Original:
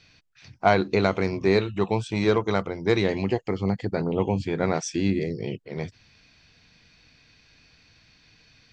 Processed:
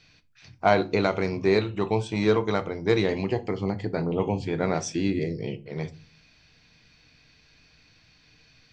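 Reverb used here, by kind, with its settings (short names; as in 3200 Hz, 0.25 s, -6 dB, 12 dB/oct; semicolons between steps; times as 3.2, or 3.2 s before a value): shoebox room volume 210 m³, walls furnished, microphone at 0.48 m; gain -1.5 dB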